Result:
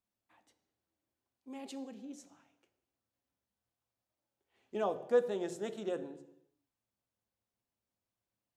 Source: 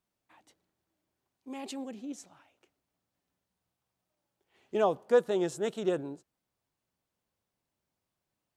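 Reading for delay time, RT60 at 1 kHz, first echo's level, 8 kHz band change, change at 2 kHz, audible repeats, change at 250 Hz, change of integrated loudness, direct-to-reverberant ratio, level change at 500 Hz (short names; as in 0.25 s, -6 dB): none, 0.85 s, none, -7.0 dB, -6.5 dB, none, -6.5 dB, -5.5 dB, 8.5 dB, -5.5 dB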